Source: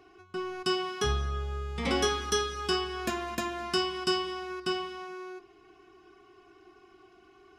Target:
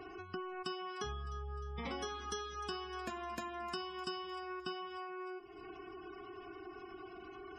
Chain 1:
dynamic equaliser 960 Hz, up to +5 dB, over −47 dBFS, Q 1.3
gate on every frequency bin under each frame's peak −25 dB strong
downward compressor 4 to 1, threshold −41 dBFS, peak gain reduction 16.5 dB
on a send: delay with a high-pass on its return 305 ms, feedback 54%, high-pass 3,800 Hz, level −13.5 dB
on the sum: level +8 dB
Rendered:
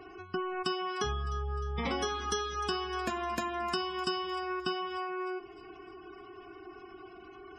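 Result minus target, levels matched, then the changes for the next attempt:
downward compressor: peak gain reduction −8.5 dB
change: downward compressor 4 to 1, threshold −52.5 dBFS, peak gain reduction 25 dB

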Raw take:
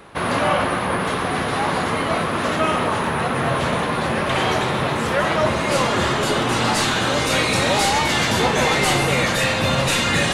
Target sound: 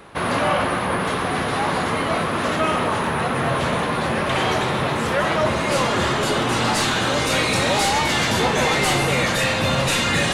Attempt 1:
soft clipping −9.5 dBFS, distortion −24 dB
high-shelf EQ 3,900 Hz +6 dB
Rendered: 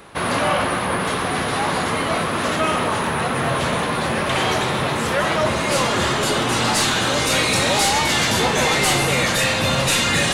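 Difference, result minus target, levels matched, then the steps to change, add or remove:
8,000 Hz band +3.5 dB
remove: high-shelf EQ 3,900 Hz +6 dB

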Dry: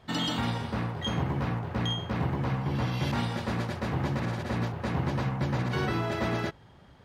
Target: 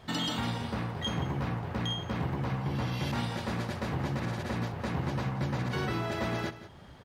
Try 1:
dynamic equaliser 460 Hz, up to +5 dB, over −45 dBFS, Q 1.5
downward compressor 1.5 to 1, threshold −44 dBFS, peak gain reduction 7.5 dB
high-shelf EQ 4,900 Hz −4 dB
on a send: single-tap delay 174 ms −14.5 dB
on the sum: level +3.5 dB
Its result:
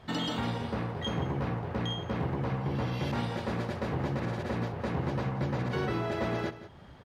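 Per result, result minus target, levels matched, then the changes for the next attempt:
8,000 Hz band −6.0 dB; 500 Hz band +3.0 dB
change: high-shelf EQ 4,900 Hz +4 dB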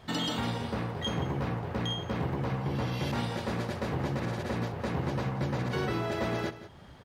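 500 Hz band +3.0 dB
remove: dynamic equaliser 460 Hz, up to +5 dB, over −45 dBFS, Q 1.5

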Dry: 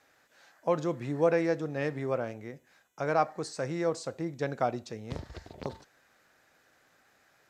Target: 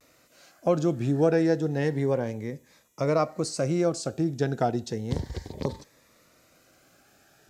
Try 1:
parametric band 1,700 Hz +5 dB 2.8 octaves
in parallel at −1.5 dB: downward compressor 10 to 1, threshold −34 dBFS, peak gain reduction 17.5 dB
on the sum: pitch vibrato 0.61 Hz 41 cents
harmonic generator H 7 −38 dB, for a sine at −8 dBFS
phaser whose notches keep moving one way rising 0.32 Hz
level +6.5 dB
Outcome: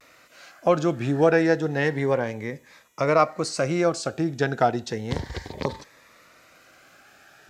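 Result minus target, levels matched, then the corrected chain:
2,000 Hz band +7.0 dB
parametric band 1,700 Hz −6 dB 2.8 octaves
in parallel at −1.5 dB: downward compressor 10 to 1, threshold −34 dBFS, peak gain reduction 13 dB
on the sum: pitch vibrato 0.61 Hz 41 cents
harmonic generator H 7 −38 dB, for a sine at −8 dBFS
phaser whose notches keep moving one way rising 0.32 Hz
level +6.5 dB

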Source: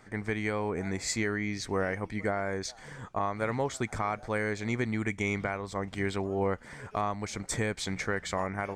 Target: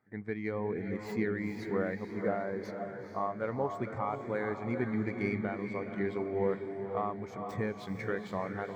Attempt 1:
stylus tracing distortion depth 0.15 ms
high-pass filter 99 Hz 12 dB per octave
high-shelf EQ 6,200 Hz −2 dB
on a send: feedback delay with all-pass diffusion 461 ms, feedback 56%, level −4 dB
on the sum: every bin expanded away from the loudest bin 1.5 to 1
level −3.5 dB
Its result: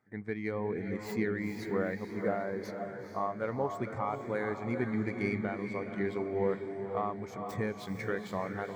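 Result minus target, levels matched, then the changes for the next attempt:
8,000 Hz band +5.0 dB
change: high-shelf EQ 6,200 Hz −8 dB

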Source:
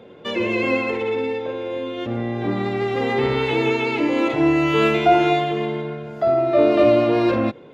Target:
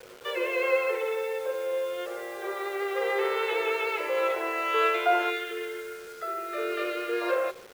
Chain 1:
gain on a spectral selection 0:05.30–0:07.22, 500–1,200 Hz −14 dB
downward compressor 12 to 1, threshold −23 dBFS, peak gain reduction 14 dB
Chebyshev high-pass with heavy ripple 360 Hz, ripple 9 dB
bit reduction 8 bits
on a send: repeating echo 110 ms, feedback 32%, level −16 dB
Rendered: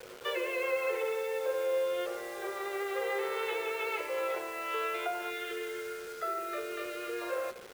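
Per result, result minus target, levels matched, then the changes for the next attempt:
downward compressor: peak gain reduction +14 dB; echo-to-direct +6.5 dB
remove: downward compressor 12 to 1, threshold −23 dBFS, peak gain reduction 14 dB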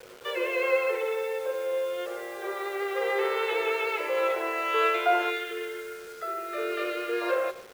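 echo-to-direct +6.5 dB
change: repeating echo 110 ms, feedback 32%, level −22.5 dB

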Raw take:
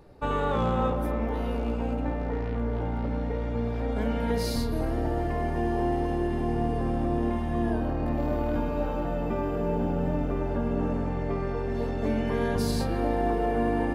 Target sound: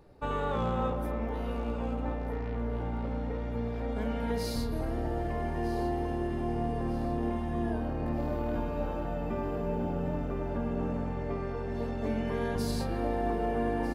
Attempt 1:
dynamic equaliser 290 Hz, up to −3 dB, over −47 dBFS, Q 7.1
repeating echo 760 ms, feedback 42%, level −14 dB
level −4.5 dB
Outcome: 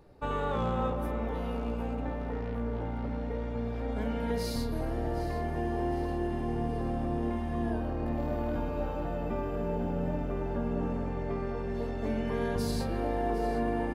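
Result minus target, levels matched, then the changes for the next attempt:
echo 489 ms early
change: repeating echo 1,249 ms, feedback 42%, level −14 dB

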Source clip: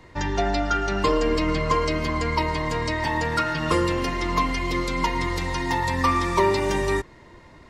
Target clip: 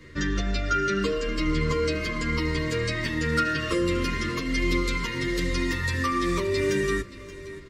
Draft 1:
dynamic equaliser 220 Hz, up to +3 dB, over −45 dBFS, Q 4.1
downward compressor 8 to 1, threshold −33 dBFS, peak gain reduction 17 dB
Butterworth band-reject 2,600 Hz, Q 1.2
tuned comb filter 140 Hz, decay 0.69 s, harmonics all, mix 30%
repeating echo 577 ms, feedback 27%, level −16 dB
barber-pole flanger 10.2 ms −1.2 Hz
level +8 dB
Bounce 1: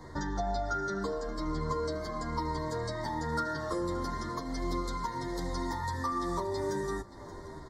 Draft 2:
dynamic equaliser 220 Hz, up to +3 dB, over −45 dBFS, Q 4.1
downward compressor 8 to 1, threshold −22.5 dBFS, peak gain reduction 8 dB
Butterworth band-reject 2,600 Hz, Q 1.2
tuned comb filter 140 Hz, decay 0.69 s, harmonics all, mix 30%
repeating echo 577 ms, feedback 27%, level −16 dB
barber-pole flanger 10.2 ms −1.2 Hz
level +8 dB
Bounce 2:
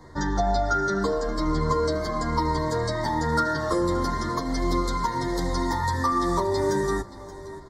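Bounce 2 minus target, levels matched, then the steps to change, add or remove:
2,000 Hz band −6.0 dB
change: Butterworth band-reject 810 Hz, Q 1.2

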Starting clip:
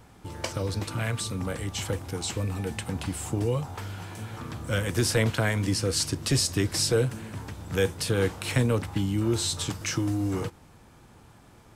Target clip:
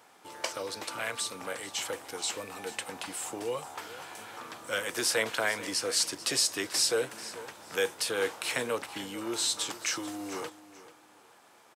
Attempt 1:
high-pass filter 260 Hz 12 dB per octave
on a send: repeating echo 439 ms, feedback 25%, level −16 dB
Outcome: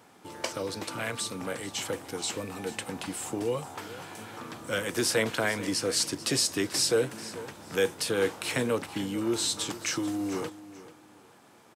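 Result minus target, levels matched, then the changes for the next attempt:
250 Hz band +7.0 dB
change: high-pass filter 530 Hz 12 dB per octave

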